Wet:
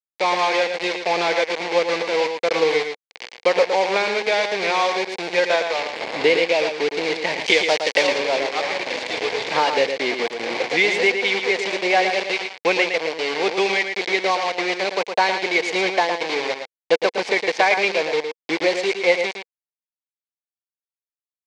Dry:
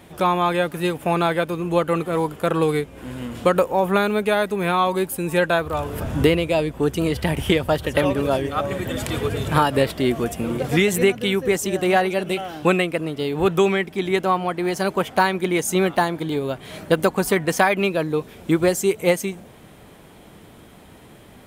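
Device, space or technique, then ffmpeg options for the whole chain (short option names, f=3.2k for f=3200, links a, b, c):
hand-held game console: -filter_complex "[0:a]acrusher=bits=3:mix=0:aa=0.000001,highpass=460,equalizer=f=480:t=q:w=4:g=6,equalizer=f=820:t=q:w=4:g=3,equalizer=f=1.3k:t=q:w=4:g=-9,equalizer=f=2.2k:t=q:w=4:g=9,equalizer=f=4.4k:t=q:w=4:g=4,lowpass=f=5.5k:w=0.5412,lowpass=f=5.5k:w=1.3066,asettb=1/sr,asplit=3[a][b][c];[a]atrim=end=5.924[d];[b]atrim=start=5.92:end=6.47,asetpts=PTS-STARTPTS,afade=t=in:d=0.004:c=qsin,afade=t=out:st=0.546:d=0.004:c=qsin,bandreject=f=5.9k:w=12[e];[c]atrim=start=6.466[f];[d][e]acrossfade=d=0.004:c1=hsin:c2=qsin[g];[g][f]acrossfade=d=0.004:c1=qsin:c2=hsin,asettb=1/sr,asplit=3[h][i][j];[h]atrim=end=7.464[k];[i]atrim=start=7.46:end=8.07,asetpts=PTS-STARTPTS,afade=t=in:d=0.004:c=qsin,afade=t=out:st=0.606:d=0.004:c=qsin,highshelf=f=3.3k:g=9.5[l];[j]atrim=start=8.066[m];[k][l]acrossfade=d=0.004:c1=hsin:c2=qsin[n];[n][m]acrossfade=d=0.004:c1=qsin:c2=hsin,aecho=1:1:112:0.447,volume=-1dB"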